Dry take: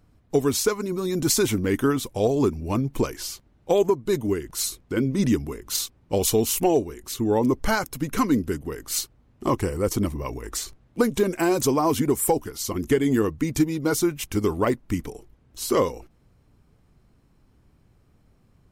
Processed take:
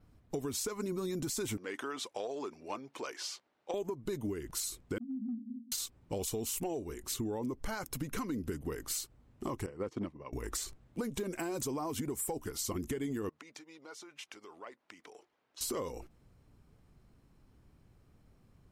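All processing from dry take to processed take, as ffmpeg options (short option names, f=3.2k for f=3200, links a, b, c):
-filter_complex "[0:a]asettb=1/sr,asplit=3[a][b][c];[a]atrim=end=1.574[d];[b]atrim=start=1.57:end=3.74,asetpts=PTS-STARTPTS,afade=t=in:d=0.004:c=qsin,afade=t=out:st=2.166:d=0.004:c=qsin,acompressor=threshold=-23dB:ratio=6:attack=3.2:release=140:knee=1:detection=peak,highpass=560,lowpass=5.8k[e];[c]atrim=start=3.736[f];[d][e]acrossfade=d=0.004:c1=hsin:c2=qsin[g];[g][f]acrossfade=d=0.004:c1=qsin:c2=hsin,asettb=1/sr,asplit=3[h][i][j];[h]atrim=end=4.984[k];[i]atrim=start=4.98:end=5.72,asetpts=PTS-STARTPTS,afade=t=in:d=0.004:c=qsin,afade=t=out:st=0.736:d=0.004:c=qsin,aeval=exprs='val(0)+0.5*0.0282*sgn(val(0))':c=same,asuperpass=centerf=240:order=12:qfactor=4.7,acompressor=threshold=-30dB:ratio=6:attack=3.2:release=140:knee=1:detection=peak[l];[j]atrim=start=5.716[m];[k][l]acrossfade=d=0.004:c1=hsin:c2=qsin[n];[n][m]acrossfade=d=0.004:c1=qsin:c2=hsin,asettb=1/sr,asplit=3[o][p][q];[o]atrim=end=9.664[r];[p]atrim=start=9.66:end=10.33,asetpts=PTS-STARTPTS,afade=t=in:d=0.004:c=qsin,afade=t=out:st=0.666:d=0.004:c=qsin,agate=range=-33dB:threshold=-22dB:ratio=3:release=100:detection=peak,aeval=exprs='clip(val(0),-1,0.112)':c=same,highpass=140,lowpass=3.3k[s];[q]atrim=start=10.326[t];[r][s]acrossfade=d=0.004:c1=hsin:c2=qsin[u];[u][t]acrossfade=d=0.004:c1=qsin:c2=hsin,asettb=1/sr,asplit=3[v][w][x];[v]atrim=end=13.294[y];[w]atrim=start=13.29:end=15.61,asetpts=PTS-STARTPTS,afade=t=in:d=0.004:c=qsin,afade=t=out:st=2.316:d=0.004:c=qsin,acompressor=threshold=-35dB:ratio=8:attack=3.2:release=140:knee=1:detection=peak,highpass=640,lowpass=5.2k[z];[x]atrim=start=15.606[aa];[y][z]acrossfade=d=0.004:c1=hsin:c2=qsin[ab];[ab][aa]acrossfade=d=0.004:c1=qsin:c2=hsin,adynamicequalizer=threshold=0.00794:dfrequency=7800:dqfactor=3.9:tfrequency=7800:tqfactor=3.9:attack=5:release=100:ratio=0.375:range=2.5:mode=boostabove:tftype=bell,alimiter=limit=-19dB:level=0:latency=1:release=156,acompressor=threshold=-29dB:ratio=6,volume=-4dB"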